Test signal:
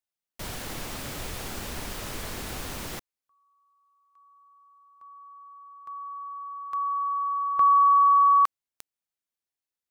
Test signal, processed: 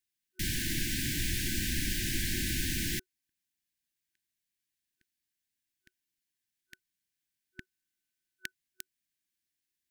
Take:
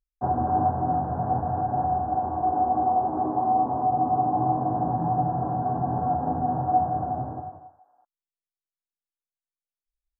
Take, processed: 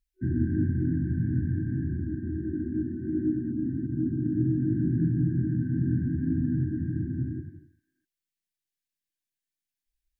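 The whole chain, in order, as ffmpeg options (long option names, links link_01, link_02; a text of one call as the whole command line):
ffmpeg -i in.wav -af "afftfilt=real='re*(1-between(b*sr/4096,370,1500))':imag='im*(1-between(b*sr/4096,370,1500))':win_size=4096:overlap=0.75,volume=4.5dB" out.wav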